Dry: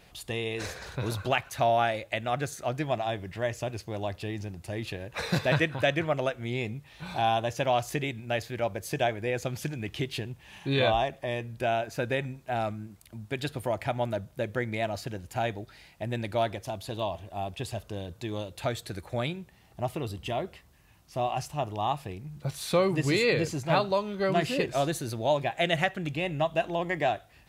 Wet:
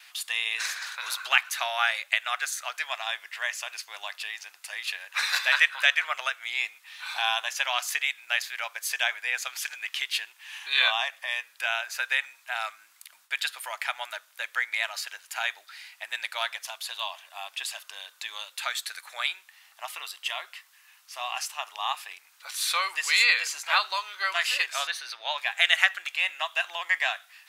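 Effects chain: high-pass 1.2 kHz 24 dB/octave; gate with hold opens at -59 dBFS; 24.87–25.38 s: Savitzky-Golay filter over 15 samples; trim +9 dB

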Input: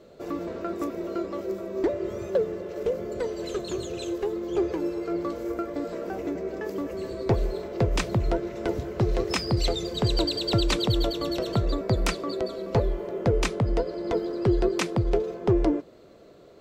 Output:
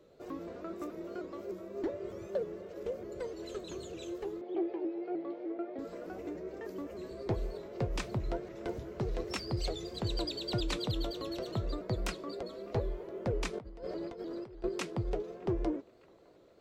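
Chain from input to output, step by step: 13.53–14.64 s: compressor with a negative ratio -33 dBFS, ratio -1; flange 0.31 Hz, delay 1.9 ms, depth 7 ms, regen -76%; 4.41–5.79 s: cabinet simulation 310–3300 Hz, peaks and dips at 340 Hz +6 dB, 490 Hz -4 dB, 750 Hz +9 dB, 1.1 kHz -8 dB, 1.5 kHz -6 dB, 2.8 kHz -3 dB; feedback echo behind a band-pass 610 ms, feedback 65%, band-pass 1.2 kHz, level -24 dB; vibrato with a chosen wave saw up 3.3 Hz, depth 100 cents; trim -6 dB

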